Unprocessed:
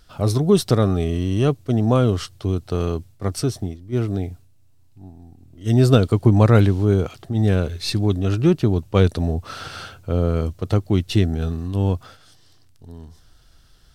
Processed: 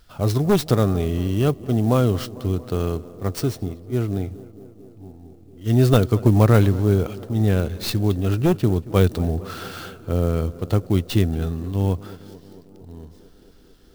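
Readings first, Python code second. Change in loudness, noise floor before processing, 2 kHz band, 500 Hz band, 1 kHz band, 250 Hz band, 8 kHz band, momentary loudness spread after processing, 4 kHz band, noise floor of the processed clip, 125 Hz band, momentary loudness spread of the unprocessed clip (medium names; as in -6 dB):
-1.0 dB, -52 dBFS, -0.5 dB, -1.0 dB, -0.5 dB, -1.0 dB, -1.0 dB, 12 LU, -2.0 dB, -49 dBFS, -1.0 dB, 12 LU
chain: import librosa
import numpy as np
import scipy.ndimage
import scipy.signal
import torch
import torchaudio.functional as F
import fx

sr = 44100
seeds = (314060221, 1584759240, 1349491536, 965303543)

p1 = np.minimum(x, 2.0 * 10.0 ** (-10.5 / 20.0) - x)
p2 = p1 + fx.echo_tape(p1, sr, ms=226, feedback_pct=87, wet_db=-16.5, lp_hz=1400.0, drive_db=3.0, wow_cents=29, dry=0)
p3 = fx.clock_jitter(p2, sr, seeds[0], jitter_ms=0.023)
y = p3 * 10.0 ** (-1.0 / 20.0)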